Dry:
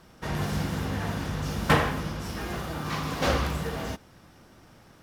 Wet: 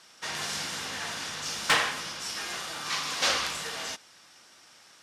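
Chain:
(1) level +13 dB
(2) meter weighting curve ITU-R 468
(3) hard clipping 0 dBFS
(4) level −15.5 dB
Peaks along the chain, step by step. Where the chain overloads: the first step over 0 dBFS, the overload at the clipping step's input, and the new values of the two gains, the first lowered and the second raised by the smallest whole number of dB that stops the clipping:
+5.5, +7.0, 0.0, −15.5 dBFS
step 1, 7.0 dB
step 1 +6 dB, step 4 −8.5 dB

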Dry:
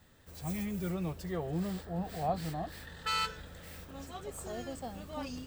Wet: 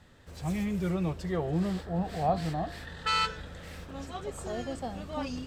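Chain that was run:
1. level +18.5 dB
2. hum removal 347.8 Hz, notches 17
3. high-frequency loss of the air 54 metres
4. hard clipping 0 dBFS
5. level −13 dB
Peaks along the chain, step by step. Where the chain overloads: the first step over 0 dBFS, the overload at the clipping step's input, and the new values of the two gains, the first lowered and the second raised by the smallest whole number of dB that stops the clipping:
−1.0, −1.5, −1.5, −1.5, −14.5 dBFS
no step passes full scale

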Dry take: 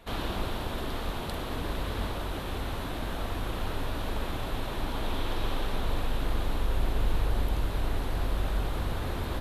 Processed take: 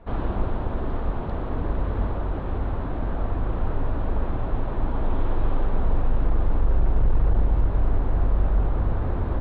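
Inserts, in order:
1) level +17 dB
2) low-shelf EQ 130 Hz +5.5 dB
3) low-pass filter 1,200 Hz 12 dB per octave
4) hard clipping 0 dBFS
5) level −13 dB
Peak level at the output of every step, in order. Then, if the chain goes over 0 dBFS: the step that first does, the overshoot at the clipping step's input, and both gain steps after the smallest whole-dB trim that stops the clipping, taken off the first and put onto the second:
+1.5, +6.5, +6.0, 0.0, −13.0 dBFS
step 1, 6.0 dB
step 1 +11 dB, step 5 −7 dB

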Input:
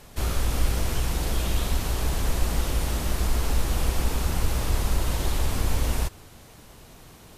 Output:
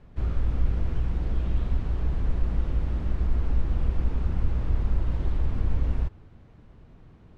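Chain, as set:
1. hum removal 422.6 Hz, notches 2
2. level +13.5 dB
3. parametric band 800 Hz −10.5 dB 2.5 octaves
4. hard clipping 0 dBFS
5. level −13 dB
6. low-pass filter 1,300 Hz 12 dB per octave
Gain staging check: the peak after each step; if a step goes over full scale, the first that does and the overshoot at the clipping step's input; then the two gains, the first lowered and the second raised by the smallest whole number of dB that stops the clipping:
−9.5, +4.0, +3.5, 0.0, −13.0, −13.0 dBFS
step 2, 3.5 dB
step 2 +9.5 dB, step 5 −9 dB

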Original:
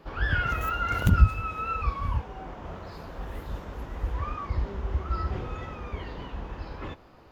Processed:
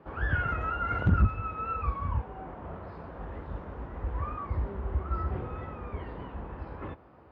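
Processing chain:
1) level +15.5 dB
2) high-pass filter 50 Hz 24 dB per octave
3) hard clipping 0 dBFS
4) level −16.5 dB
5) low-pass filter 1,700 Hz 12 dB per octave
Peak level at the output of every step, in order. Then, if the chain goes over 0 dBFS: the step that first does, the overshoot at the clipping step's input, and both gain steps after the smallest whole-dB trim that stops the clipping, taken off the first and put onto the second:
+9.5, +9.5, 0.0, −16.5, −16.5 dBFS
step 1, 9.5 dB
step 1 +5.5 dB, step 4 −6.5 dB

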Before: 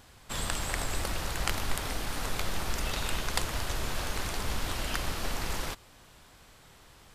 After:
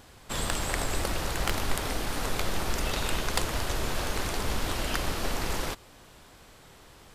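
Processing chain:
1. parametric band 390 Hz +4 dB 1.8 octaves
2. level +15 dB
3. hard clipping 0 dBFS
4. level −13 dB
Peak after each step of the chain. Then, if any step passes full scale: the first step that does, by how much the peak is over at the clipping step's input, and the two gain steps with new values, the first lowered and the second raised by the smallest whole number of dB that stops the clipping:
−6.0, +9.0, 0.0, −13.0 dBFS
step 2, 9.0 dB
step 2 +6 dB, step 4 −4 dB

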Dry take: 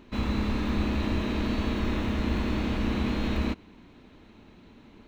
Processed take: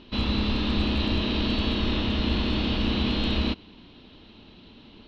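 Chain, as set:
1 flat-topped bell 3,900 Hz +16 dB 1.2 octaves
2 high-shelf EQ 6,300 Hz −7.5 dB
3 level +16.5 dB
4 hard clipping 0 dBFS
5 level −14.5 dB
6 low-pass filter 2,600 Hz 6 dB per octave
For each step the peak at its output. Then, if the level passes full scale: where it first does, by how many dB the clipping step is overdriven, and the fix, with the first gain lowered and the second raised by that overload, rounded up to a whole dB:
−11.0, −12.0, +4.5, 0.0, −14.5, −14.5 dBFS
step 3, 4.5 dB
step 3 +11.5 dB, step 5 −9.5 dB

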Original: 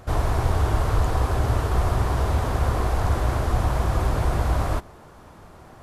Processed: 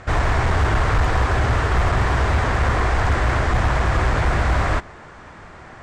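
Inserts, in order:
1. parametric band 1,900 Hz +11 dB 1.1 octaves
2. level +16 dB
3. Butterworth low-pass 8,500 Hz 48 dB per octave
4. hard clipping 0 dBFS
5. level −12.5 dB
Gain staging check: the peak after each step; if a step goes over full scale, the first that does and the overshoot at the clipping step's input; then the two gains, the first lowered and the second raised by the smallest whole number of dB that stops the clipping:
−7.0, +9.0, +9.0, 0.0, −12.5 dBFS
step 2, 9.0 dB
step 2 +7 dB, step 5 −3.5 dB

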